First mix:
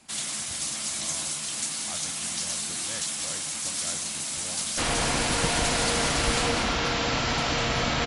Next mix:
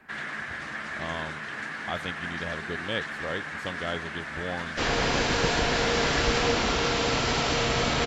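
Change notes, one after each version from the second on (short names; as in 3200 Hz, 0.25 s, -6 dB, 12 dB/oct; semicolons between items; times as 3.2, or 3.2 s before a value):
speech +9.5 dB; first sound: add synth low-pass 1700 Hz, resonance Q 5.8; master: add bell 420 Hz +8.5 dB 0.29 oct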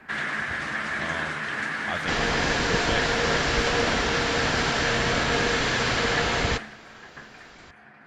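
first sound +6.0 dB; second sound: entry -2.70 s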